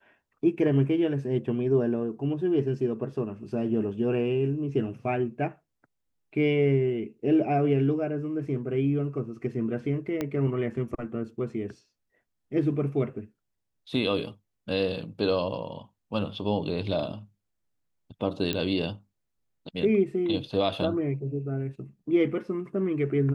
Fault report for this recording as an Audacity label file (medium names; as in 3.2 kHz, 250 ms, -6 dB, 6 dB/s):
10.210000	10.210000	pop -16 dBFS
18.530000	18.530000	pop -14 dBFS